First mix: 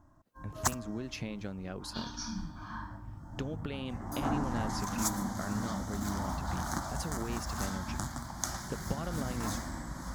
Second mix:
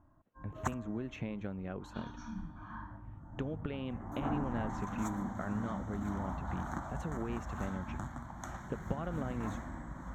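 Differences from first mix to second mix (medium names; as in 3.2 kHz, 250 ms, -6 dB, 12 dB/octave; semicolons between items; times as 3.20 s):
background -3.5 dB; master: add boxcar filter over 9 samples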